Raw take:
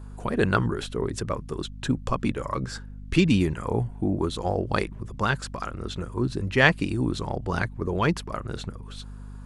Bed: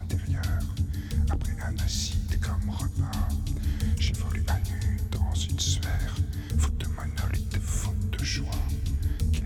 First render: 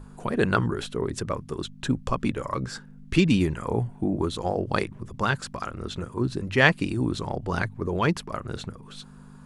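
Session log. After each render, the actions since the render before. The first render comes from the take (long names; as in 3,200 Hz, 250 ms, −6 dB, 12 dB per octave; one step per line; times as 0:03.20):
mains-hum notches 50/100 Hz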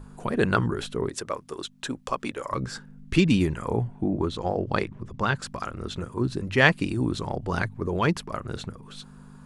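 0:01.09–0:02.51: bass and treble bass −15 dB, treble +2 dB
0:03.76–0:05.42: high-frequency loss of the air 69 metres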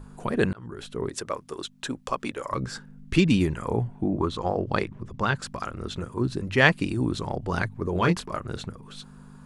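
0:00.53–0:01.16: fade in
0:04.16–0:04.63: parametric band 1,100 Hz +7.5 dB 0.4 octaves
0:07.93–0:08.39: double-tracking delay 23 ms −6 dB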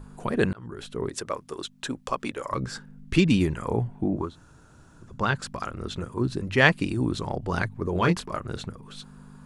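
0:04.25–0:05.09: fill with room tone, crossfade 0.24 s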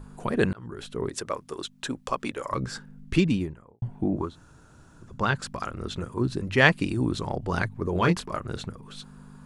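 0:03.00–0:03.82: fade out and dull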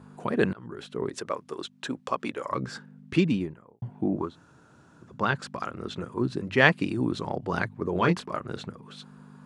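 high-pass filter 140 Hz 12 dB per octave
high-shelf EQ 6,900 Hz −12 dB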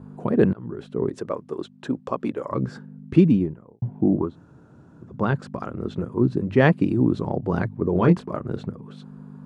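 tilt shelving filter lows +9 dB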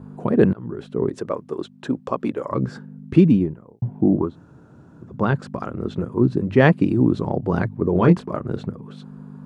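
level +2.5 dB
brickwall limiter −2 dBFS, peak gain reduction 1 dB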